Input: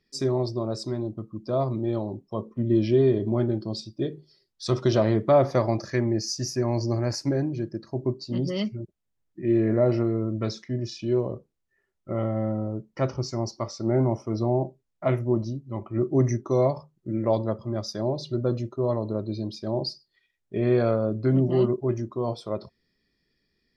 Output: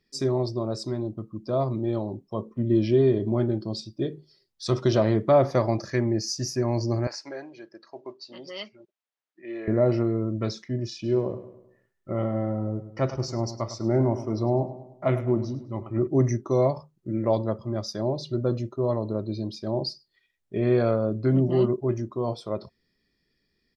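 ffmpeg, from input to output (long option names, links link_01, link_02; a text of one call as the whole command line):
ffmpeg -i in.wav -filter_complex "[0:a]asettb=1/sr,asplit=3[link_01][link_02][link_03];[link_01]atrim=end=7.074[link_04];[link_02]atrim=start=7.07:end=9.68,asetpts=PTS-STARTPTS,afade=type=in:duration=0.004:curve=qsin,afade=type=out:start_time=2.606:duration=0.004:curve=qsin,highpass=730,lowpass=4600[link_05];[link_03]atrim=start=9.676[link_06];[link_04][link_05]acrossfade=duration=0.004:curve1=hsin:curve2=qsin[link_07];[link_07][link_06]acrossfade=duration=0.004:curve1=qsin:curve2=hsin,asplit=3[link_08][link_09][link_10];[link_08]afade=type=out:start_time=11.03:duration=0.02[link_11];[link_09]asplit=2[link_12][link_13];[link_13]adelay=103,lowpass=frequency=3800:poles=1,volume=-12dB,asplit=2[link_14][link_15];[link_15]adelay=103,lowpass=frequency=3800:poles=1,volume=0.47,asplit=2[link_16][link_17];[link_17]adelay=103,lowpass=frequency=3800:poles=1,volume=0.47,asplit=2[link_18][link_19];[link_19]adelay=103,lowpass=frequency=3800:poles=1,volume=0.47,asplit=2[link_20][link_21];[link_21]adelay=103,lowpass=frequency=3800:poles=1,volume=0.47[link_22];[link_12][link_14][link_16][link_18][link_20][link_22]amix=inputs=6:normalize=0,afade=type=in:start_time=11.03:duration=0.02,afade=type=out:start_time=16.06:duration=0.02[link_23];[link_10]afade=type=in:start_time=16.06:duration=0.02[link_24];[link_11][link_23][link_24]amix=inputs=3:normalize=0" out.wav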